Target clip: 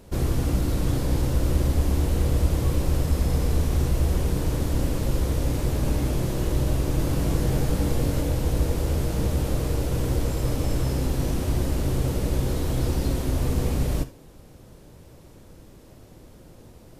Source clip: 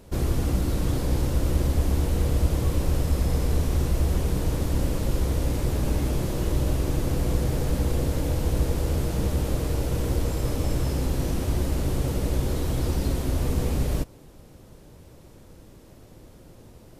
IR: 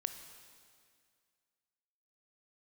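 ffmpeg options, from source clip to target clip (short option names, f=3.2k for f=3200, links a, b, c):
-filter_complex "[0:a]asettb=1/sr,asplit=3[a][b][c];[a]atrim=end=6.974[d];[b]atrim=start=6.97:end=8.23,asetpts=PTS-STARTPTS,afade=t=in:d=0.004:c=qsin,afade=t=out:st=1.256:d=0.004:c=qsin,asplit=2[e][f];[f]adelay=21,volume=-5dB[g];[e][g]amix=inputs=2:normalize=0,atrim=end_sample=55566[h];[c]atrim=start=8.226[i];[d][h]acrossfade=d=0.004:c1=hsin:c2=qsin[j];[j][i]acrossfade=d=0.004:c1=qsin:c2=hsin[k];[1:a]atrim=start_sample=2205,atrim=end_sample=3969[l];[k][l]afir=irnorm=-1:irlink=0,volume=1.5dB"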